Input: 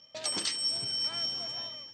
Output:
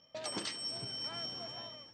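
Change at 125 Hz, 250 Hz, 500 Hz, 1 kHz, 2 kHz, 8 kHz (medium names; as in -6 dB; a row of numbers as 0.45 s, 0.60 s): 0.0 dB, 0.0 dB, -0.5 dB, -1.5 dB, -4.0 dB, -10.0 dB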